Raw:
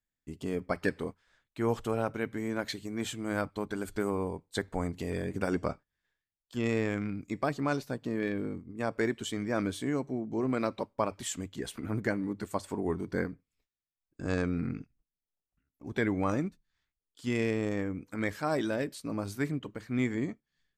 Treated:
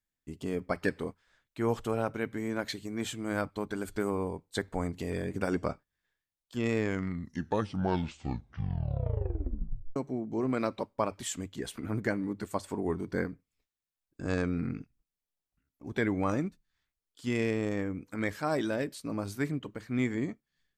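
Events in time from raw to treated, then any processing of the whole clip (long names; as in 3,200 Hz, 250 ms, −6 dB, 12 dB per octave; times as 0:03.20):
0:06.75: tape stop 3.21 s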